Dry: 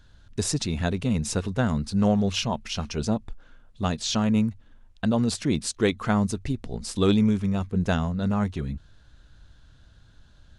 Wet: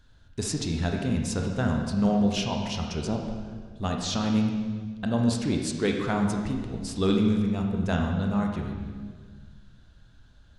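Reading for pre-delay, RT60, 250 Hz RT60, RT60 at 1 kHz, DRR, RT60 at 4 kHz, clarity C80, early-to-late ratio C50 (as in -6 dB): 23 ms, 1.6 s, 2.0 s, 1.5 s, 1.5 dB, 1.4 s, 5.0 dB, 3.5 dB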